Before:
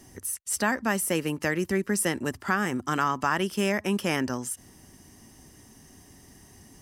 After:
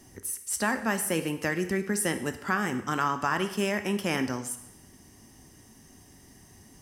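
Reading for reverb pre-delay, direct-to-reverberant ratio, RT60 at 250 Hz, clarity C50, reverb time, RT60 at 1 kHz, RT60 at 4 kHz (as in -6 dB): 18 ms, 8.5 dB, 0.70 s, 11.0 dB, 0.80 s, 0.85 s, 0.75 s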